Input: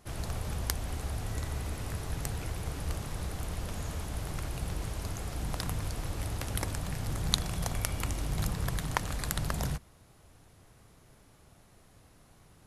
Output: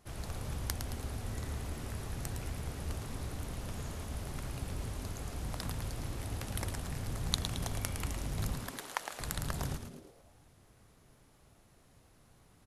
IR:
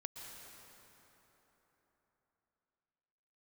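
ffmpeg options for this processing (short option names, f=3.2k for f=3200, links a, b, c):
-filter_complex "[0:a]asettb=1/sr,asplit=3[a][b][c];[a]atrim=end=8.584[d];[b]atrim=start=8.58:end=9.2,asetpts=PTS-STARTPTS,afade=t=in:d=0.004:c=qsin,afade=t=out:st=0.616:d=0.004:c=qsin,highpass=570[e];[c]atrim=start=9.196[f];[d][e]acrossfade=d=0.004:c1=hsin:c2=qsin[g];[g][f]acrossfade=d=0.004:c1=qsin:c2=hsin,asplit=7[h][i][j][k][l][m][n];[i]adelay=110,afreqshift=-150,volume=-7dB[o];[j]adelay=220,afreqshift=-300,volume=-13.6dB[p];[k]adelay=330,afreqshift=-450,volume=-20.1dB[q];[l]adelay=440,afreqshift=-600,volume=-26.7dB[r];[m]adelay=550,afreqshift=-750,volume=-33.2dB[s];[n]adelay=660,afreqshift=-900,volume=-39.8dB[t];[h][o][p][q][r][s][t]amix=inputs=7:normalize=0,volume=-5dB"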